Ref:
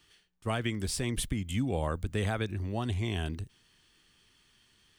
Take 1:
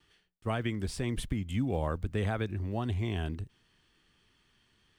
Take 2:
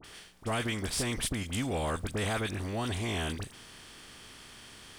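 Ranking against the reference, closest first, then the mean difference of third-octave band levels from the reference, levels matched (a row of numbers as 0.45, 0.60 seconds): 1, 2; 2.0, 10.5 decibels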